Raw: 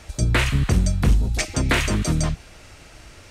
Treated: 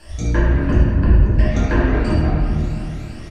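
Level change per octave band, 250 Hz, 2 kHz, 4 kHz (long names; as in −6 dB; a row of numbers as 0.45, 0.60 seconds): +5.5, −1.5, −9.5 decibels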